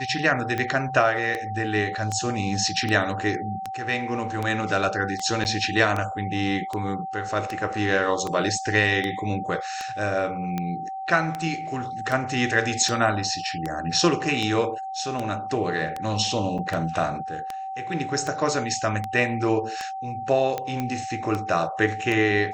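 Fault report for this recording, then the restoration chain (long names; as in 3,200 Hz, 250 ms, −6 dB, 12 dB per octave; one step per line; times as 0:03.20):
scratch tick 78 rpm −14 dBFS
whistle 770 Hz −30 dBFS
0:05.44–0:05.45: drop-out 9.7 ms
0:16.58–0:16.59: drop-out 6.6 ms
0:20.80: click −14 dBFS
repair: click removal
notch filter 770 Hz, Q 30
repair the gap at 0:05.44, 9.7 ms
repair the gap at 0:16.58, 6.6 ms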